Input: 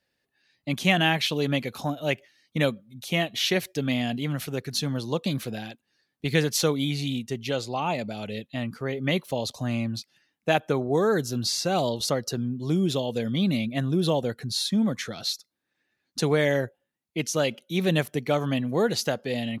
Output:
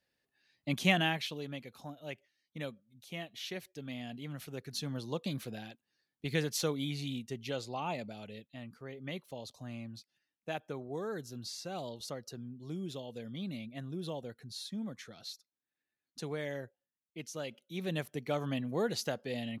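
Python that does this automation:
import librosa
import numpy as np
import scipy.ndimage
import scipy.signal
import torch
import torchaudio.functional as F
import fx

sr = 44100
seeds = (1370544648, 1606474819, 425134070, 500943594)

y = fx.gain(x, sr, db=fx.line((0.89, -5.5), (1.49, -17.0), (3.83, -17.0), (4.98, -9.5), (7.95, -9.5), (8.53, -16.0), (17.43, -16.0), (18.43, -9.0)))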